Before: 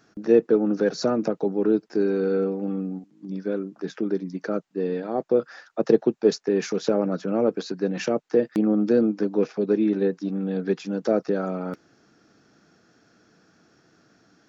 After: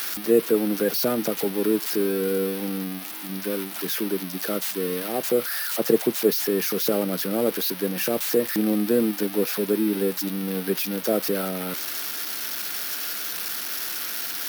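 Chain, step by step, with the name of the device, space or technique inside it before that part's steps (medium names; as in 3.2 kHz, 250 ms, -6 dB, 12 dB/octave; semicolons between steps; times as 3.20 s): budget class-D amplifier (dead-time distortion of 0.071 ms; zero-crossing glitches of -13 dBFS); trim -1.5 dB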